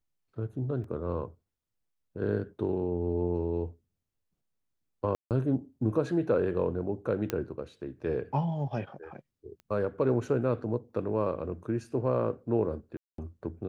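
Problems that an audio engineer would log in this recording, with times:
0:00.84: drop-out 3 ms
0:05.15–0:05.31: drop-out 158 ms
0:07.30: click −15 dBFS
0:09.60: click −35 dBFS
0:12.97–0:13.18: drop-out 213 ms

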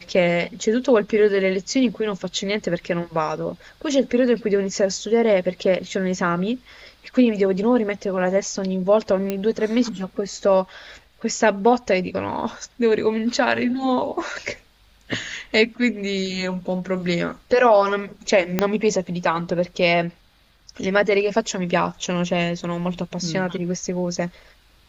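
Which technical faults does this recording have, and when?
0:09.30: click −11 dBFS
0:18.59: click −4 dBFS

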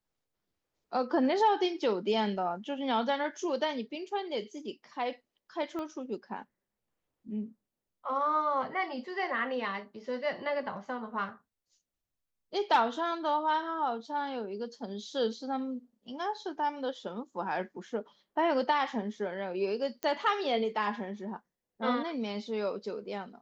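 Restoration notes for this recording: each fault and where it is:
0:05.79: click −26 dBFS
0:20.03: click −19 dBFS

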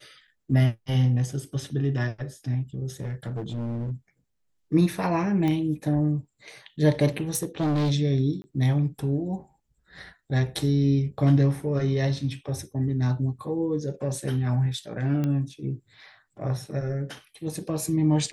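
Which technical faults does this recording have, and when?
0:03.00–0:03.92: clipping −27.5 dBFS
0:05.48: click −17 dBFS
0:07.34–0:07.92: clipping −21 dBFS
0:08.42–0:08.44: drop-out 20 ms
0:15.24: click −17 dBFS

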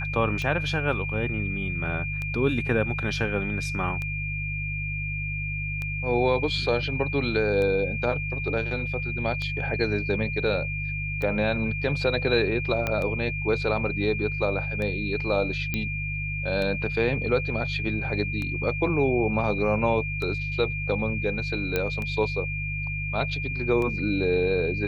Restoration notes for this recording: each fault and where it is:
mains hum 50 Hz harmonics 3 −32 dBFS
scratch tick 33 1/3 rpm −19 dBFS
whistle 2,400 Hz −31 dBFS
0:12.87: click −12 dBFS
0:15.74: click −13 dBFS
0:21.76: click −11 dBFS

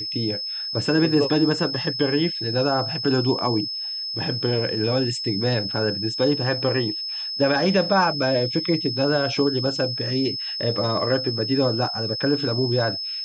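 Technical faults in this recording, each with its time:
whistle 5,200 Hz −27 dBFS

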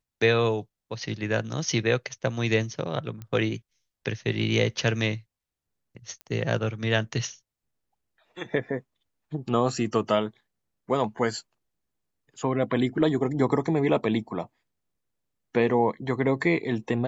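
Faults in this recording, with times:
0:03.22: click −25 dBFS
0:06.21: click −25 dBFS

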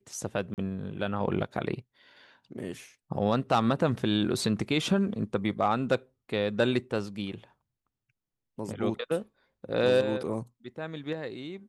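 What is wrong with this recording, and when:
0:00.54–0:00.58: drop-out 38 ms

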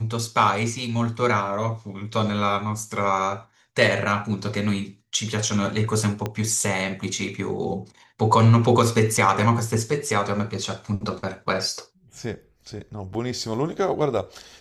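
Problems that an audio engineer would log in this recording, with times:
0:06.26: click −13 dBFS

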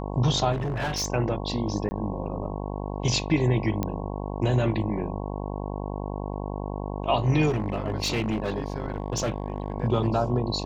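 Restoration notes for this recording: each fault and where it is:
mains buzz 50 Hz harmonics 22 −32 dBFS
0:00.52–0:01.08: clipping −24.5 dBFS
0:01.89–0:01.91: drop-out 20 ms
0:03.83: click −13 dBFS
0:07.49–0:09.74: clipping −21.5 dBFS

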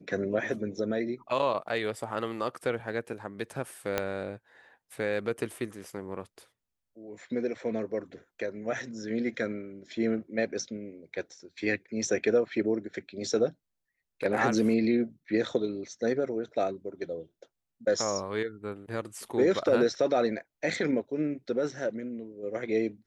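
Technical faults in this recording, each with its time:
0:03.98: click −12 dBFS

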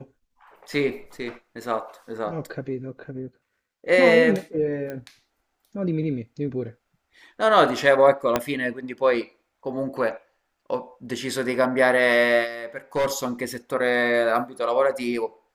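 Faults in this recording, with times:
0:04.90: click −21 dBFS
0:08.36: click −6 dBFS
0:12.96–0:13.12: clipping −18 dBFS

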